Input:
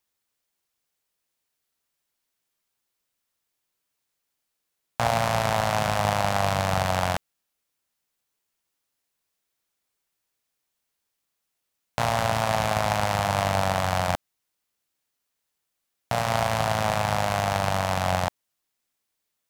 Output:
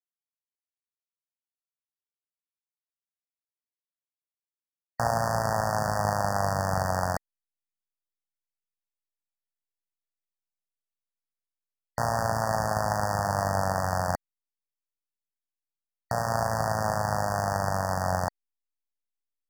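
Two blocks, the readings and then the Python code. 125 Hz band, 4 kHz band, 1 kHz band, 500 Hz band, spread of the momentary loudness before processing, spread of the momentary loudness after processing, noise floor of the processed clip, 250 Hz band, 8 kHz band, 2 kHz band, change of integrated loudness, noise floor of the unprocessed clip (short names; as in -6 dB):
-2.5 dB, -10.0 dB, -2.5 dB, -2.5 dB, 5 LU, 5 LU, under -85 dBFS, -2.5 dB, -2.5 dB, -4.5 dB, -3.0 dB, -81 dBFS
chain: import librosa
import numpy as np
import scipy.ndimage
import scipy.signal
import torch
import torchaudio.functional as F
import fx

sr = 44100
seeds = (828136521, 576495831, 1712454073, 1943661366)

y = fx.delta_hold(x, sr, step_db=-40.0)
y = fx.brickwall_bandstop(y, sr, low_hz=1900.0, high_hz=4500.0)
y = y * 10.0 ** (-2.5 / 20.0)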